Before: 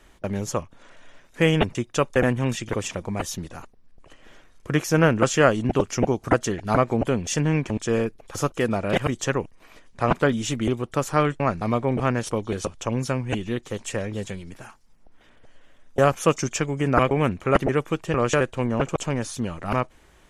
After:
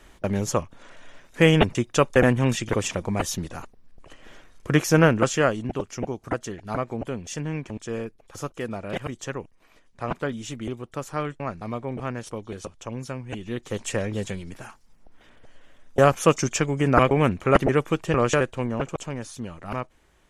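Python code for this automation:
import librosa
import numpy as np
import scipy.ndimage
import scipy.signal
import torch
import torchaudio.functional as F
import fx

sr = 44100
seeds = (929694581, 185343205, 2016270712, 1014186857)

y = fx.gain(x, sr, db=fx.line((4.91, 2.5), (5.82, -8.0), (13.32, -8.0), (13.77, 1.5), (18.14, 1.5), (19.1, -6.5)))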